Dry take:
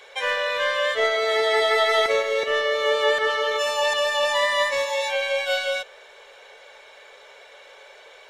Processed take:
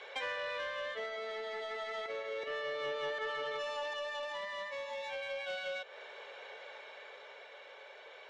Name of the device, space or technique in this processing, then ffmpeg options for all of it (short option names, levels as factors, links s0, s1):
AM radio: -af "highpass=110,lowpass=3800,acompressor=threshold=0.02:ratio=4,asoftclip=type=tanh:threshold=0.0376,tremolo=f=0.32:d=0.36,volume=0.841"